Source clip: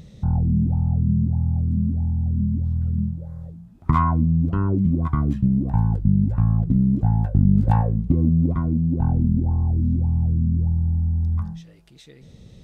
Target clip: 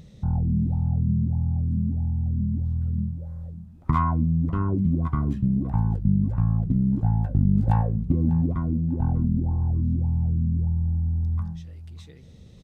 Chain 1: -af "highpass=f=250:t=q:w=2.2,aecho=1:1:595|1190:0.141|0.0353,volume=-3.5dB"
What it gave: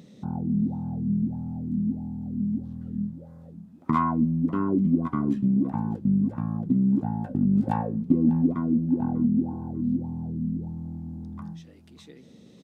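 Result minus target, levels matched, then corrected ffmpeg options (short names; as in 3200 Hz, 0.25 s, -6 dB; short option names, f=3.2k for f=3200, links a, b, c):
250 Hz band +4.5 dB
-af "aecho=1:1:595|1190:0.141|0.0353,volume=-3.5dB"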